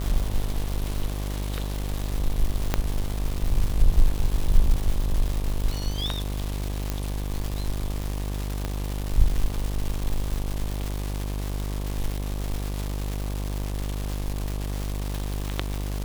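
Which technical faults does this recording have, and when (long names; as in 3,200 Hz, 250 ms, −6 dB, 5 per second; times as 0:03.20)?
mains buzz 50 Hz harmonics 24 −29 dBFS
surface crackle 450 per second −27 dBFS
0:02.74: click −7 dBFS
0:06.90: click −12 dBFS
0:08.65: click −14 dBFS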